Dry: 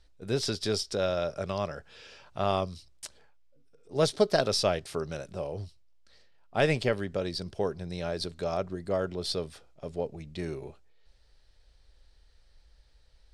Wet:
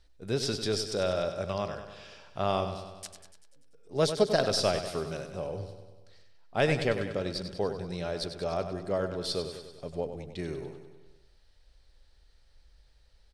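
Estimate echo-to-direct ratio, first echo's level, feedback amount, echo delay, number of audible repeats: −7.5 dB, −9.5 dB, 60%, 97 ms, 6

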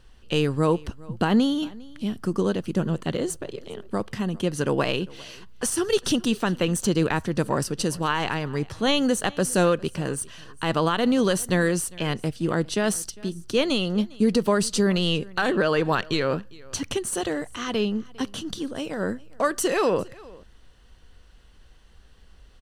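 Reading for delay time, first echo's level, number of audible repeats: 403 ms, −23.0 dB, 1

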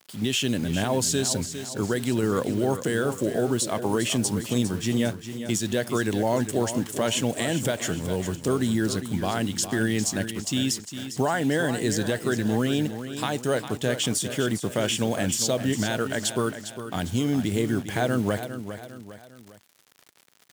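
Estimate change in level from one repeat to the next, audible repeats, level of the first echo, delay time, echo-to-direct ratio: −7.0 dB, 3, −10.5 dB, 404 ms, −9.5 dB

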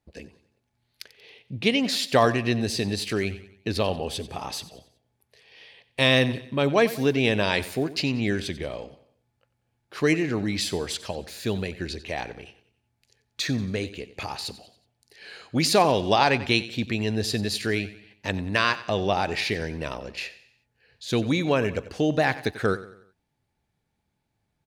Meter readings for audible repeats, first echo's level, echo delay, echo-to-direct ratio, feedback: 3, −16.0 dB, 92 ms, −15.0 dB, 44%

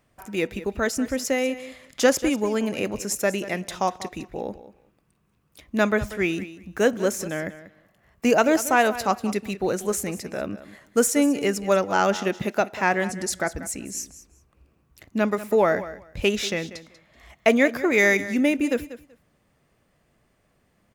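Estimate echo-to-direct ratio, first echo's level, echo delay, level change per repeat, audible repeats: −15.0 dB, −15.0 dB, 190 ms, −15.5 dB, 2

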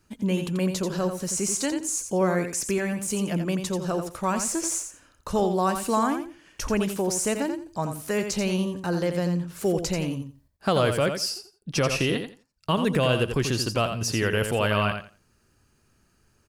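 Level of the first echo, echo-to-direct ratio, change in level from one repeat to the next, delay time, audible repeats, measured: −7.5 dB, −7.5 dB, −14.5 dB, 86 ms, 2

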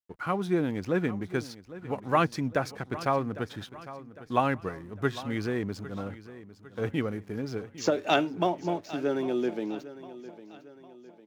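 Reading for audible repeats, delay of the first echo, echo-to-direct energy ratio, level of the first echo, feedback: 3, 804 ms, −15.0 dB, −16.0 dB, 46%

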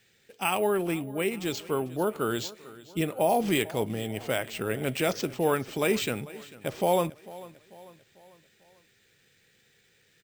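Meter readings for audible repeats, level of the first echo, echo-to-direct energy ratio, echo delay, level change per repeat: 3, −19.0 dB, −18.0 dB, 445 ms, −6.5 dB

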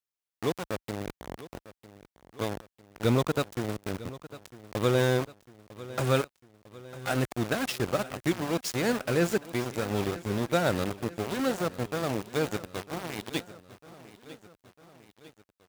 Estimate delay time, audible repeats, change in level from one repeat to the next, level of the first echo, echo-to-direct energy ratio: 951 ms, 3, −5.0 dB, −17.0 dB, −15.5 dB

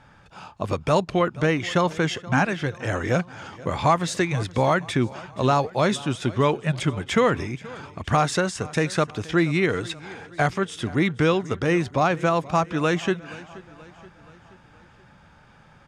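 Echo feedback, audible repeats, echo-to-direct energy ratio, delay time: 53%, 3, −18.5 dB, 477 ms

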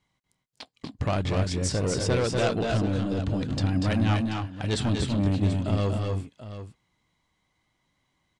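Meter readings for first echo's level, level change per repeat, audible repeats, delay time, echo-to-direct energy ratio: −5.0 dB, repeats not evenly spaced, 2, 240 ms, −2.5 dB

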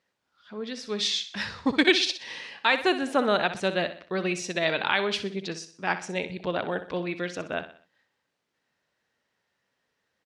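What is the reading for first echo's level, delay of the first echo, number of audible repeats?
−12.0 dB, 62 ms, 4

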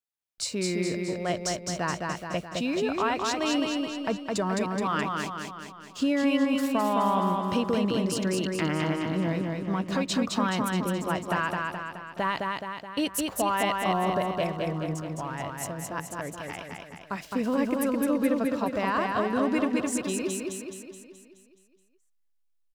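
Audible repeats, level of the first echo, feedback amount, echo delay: 7, −3.0 dB, 55%, 212 ms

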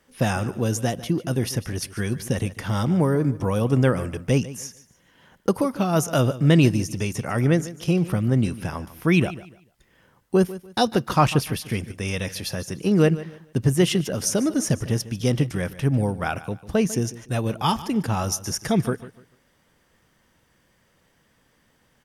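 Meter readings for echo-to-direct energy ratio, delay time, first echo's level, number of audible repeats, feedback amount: −16.0 dB, 147 ms, −16.5 dB, 2, 28%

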